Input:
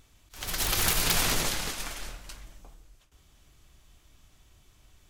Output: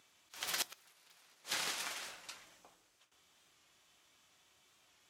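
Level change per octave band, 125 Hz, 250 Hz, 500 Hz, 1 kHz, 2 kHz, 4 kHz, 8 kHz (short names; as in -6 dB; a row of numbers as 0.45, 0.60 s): -30.0, -21.0, -15.5, -12.5, -10.5, -11.0, -13.5 dB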